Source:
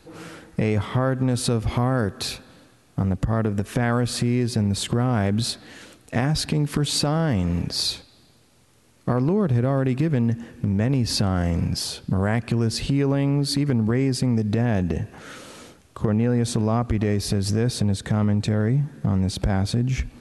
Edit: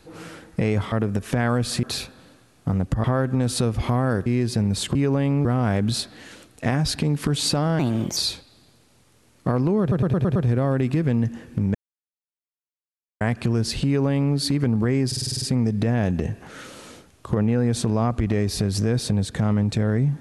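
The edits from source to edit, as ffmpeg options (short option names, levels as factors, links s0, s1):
-filter_complex "[0:a]asplit=23[s0][s1][s2][s3][s4][s5][s6][s7][s8][s9][s10][s11][s12][s13][s14][s15][s16][s17][s18][s19][s20][s21][s22];[s0]atrim=end=0.922[s23];[s1]atrim=start=3.348:end=4.262[s24];[s2]atrim=start=2.138:end=3.352[s25];[s3]atrim=start=0.918:end=2.142[s26];[s4]atrim=start=4.258:end=4.952[s27];[s5]atrim=start=12.918:end=13.422[s28];[s6]atrim=start=4.948:end=7.294[s29];[s7]atrim=start=7.29:end=7.78,asetpts=PTS-STARTPTS,asetrate=57330,aresample=44100,atrim=end_sample=16622,asetpts=PTS-STARTPTS[s30];[s8]atrim=start=7.776:end=9.532[s31];[s9]atrim=start=9.418:end=9.532[s32];[s10]atrim=start=9.418:end=9.532[s33];[s11]atrim=start=9.418:end=9.532[s34];[s12]atrim=start=9.418:end=9.532[s35];[s13]atrim=start=9.418:end=10.81,asetpts=PTS-STARTPTS,afade=t=out:st=1.388:d=0.004:c=hsin[s36];[s14]atrim=start=10.81:end=12.27,asetpts=PTS-STARTPTS,volume=0[s37];[s15]atrim=start=12.27:end=14.182,asetpts=PTS-STARTPTS,afade=t=in:d=0.004:c=hsin[s38];[s16]atrim=start=14.128:end=14.182[s39];[s17]atrim=start=14.128:end=14.182[s40];[s18]atrim=start=14.128:end=14.182[s41];[s19]atrim=start=14.128:end=14.182[s42];[s20]atrim=start=14.128:end=14.182[s43];[s21]atrim=start=14.128:end=14.182[s44];[s22]atrim=start=14.128[s45];[s23][s24]acrossfade=d=0.004:c1=hsin:c2=hsin[s46];[s46][s25]acrossfade=d=0.004:c1=hsin:c2=hsin[s47];[s47][s26]acrossfade=d=0.004:c1=hsin:c2=hsin[s48];[s48][s27]acrossfade=d=0.004:c1=hsin:c2=hsin[s49];[s49][s28]acrossfade=d=0.004:c1=hsin:c2=hsin[s50];[s50][s29]acrossfade=d=0.004:c1=hsin:c2=hsin[s51];[s51][s30]acrossfade=d=0.004:c1=hsin:c2=hsin[s52];[s52][s31]acrossfade=d=0.004:c1=hsin:c2=hsin[s53];[s53][s32]acrossfade=d=0.004:c1=hsin:c2=hsin[s54];[s54][s33]acrossfade=d=0.004:c1=hsin:c2=hsin[s55];[s55][s34]acrossfade=d=0.004:c1=hsin:c2=hsin[s56];[s56][s35]acrossfade=d=0.004:c1=hsin:c2=hsin[s57];[s36][s37][s38]concat=n=3:v=0:a=1[s58];[s57][s58]acrossfade=d=0.004:c1=hsin:c2=hsin[s59];[s59][s39]acrossfade=d=0.004:c1=hsin:c2=hsin[s60];[s60][s40]acrossfade=d=0.004:c1=hsin:c2=hsin[s61];[s61][s41]acrossfade=d=0.004:c1=hsin:c2=hsin[s62];[s62][s42]acrossfade=d=0.004:c1=hsin:c2=hsin[s63];[s63][s43]acrossfade=d=0.004:c1=hsin:c2=hsin[s64];[s64][s44]acrossfade=d=0.004:c1=hsin:c2=hsin[s65];[s65][s45]acrossfade=d=0.004:c1=hsin:c2=hsin"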